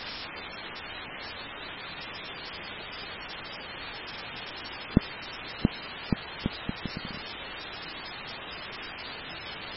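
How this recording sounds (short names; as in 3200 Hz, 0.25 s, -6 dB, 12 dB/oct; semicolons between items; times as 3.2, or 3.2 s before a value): a quantiser's noise floor 6-bit, dither triangular; MP3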